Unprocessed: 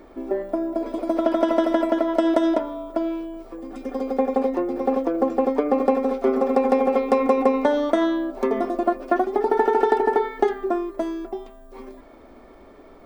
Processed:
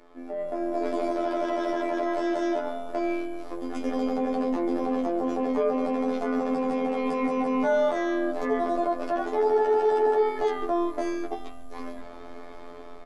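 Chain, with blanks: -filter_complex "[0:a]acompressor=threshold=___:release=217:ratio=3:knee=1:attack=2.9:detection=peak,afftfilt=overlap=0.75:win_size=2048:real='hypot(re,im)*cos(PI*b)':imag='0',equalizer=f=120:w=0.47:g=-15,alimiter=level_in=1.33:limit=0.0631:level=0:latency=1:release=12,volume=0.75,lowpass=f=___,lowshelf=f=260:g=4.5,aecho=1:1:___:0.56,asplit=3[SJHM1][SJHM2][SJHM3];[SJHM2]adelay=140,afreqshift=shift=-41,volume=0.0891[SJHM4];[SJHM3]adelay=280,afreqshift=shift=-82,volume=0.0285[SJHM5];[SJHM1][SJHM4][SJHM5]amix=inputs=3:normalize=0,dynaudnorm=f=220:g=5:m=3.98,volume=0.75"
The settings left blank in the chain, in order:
0.0794, 9500, 6.9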